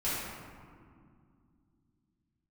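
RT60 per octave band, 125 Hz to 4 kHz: 3.4, 3.7, 2.3, 2.1, 1.6, 1.0 seconds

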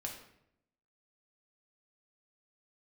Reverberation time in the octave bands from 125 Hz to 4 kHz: 1.0, 0.95, 0.80, 0.70, 0.65, 0.55 seconds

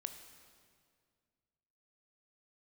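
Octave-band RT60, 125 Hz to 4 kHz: 2.6, 2.4, 2.2, 1.9, 1.8, 1.7 seconds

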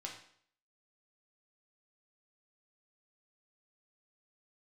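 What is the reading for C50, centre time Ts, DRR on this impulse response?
6.0 dB, 28 ms, −1.5 dB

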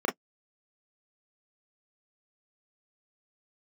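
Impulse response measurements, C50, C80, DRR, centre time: 21.0 dB, 45.0 dB, −1.0 dB, 21 ms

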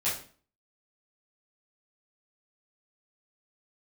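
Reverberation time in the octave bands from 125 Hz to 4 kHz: 0.50, 0.50, 0.45, 0.40, 0.40, 0.35 seconds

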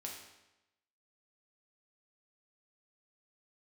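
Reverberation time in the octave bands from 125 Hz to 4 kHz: 0.95, 0.95, 0.95, 0.95, 0.90, 0.85 seconds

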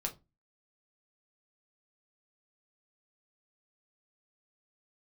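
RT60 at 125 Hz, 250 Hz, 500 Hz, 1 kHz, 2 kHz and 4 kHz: 0.40, 0.35, 0.25, 0.25, 0.15, 0.20 seconds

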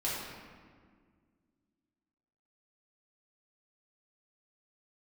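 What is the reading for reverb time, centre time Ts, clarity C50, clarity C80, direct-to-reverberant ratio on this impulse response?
1.8 s, 99 ms, −1.0 dB, 1.5 dB, −8.0 dB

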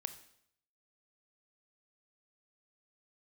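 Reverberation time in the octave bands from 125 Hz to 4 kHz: 0.80, 0.70, 0.70, 0.70, 0.65, 0.65 seconds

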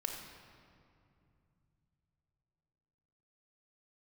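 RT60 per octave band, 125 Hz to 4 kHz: 4.5, 3.6, 2.7, 2.5, 2.0, 1.5 seconds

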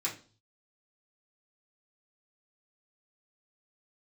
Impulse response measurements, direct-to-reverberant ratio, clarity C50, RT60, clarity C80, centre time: −6.5 dB, 11.0 dB, 0.40 s, 16.5 dB, 19 ms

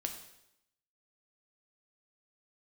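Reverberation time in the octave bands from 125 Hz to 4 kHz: 0.80, 0.90, 0.85, 0.80, 0.80, 0.80 seconds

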